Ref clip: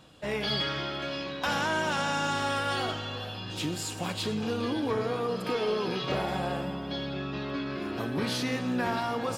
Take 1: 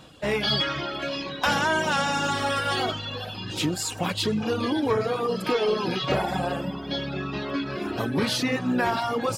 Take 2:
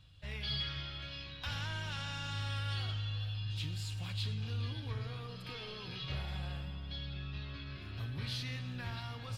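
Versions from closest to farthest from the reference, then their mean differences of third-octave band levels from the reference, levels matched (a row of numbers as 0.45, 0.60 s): 1, 2; 2.5, 6.5 dB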